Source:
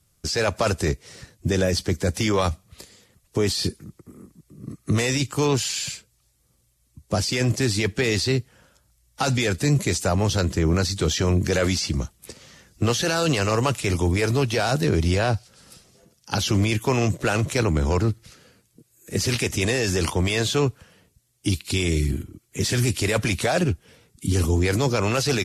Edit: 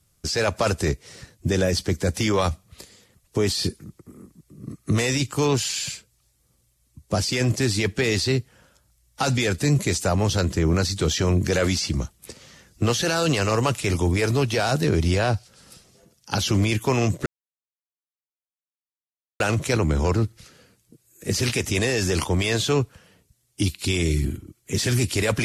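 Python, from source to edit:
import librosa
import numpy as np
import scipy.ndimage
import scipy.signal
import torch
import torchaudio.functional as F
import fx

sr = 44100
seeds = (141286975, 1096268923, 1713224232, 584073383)

y = fx.edit(x, sr, fx.insert_silence(at_s=17.26, length_s=2.14), tone=tone)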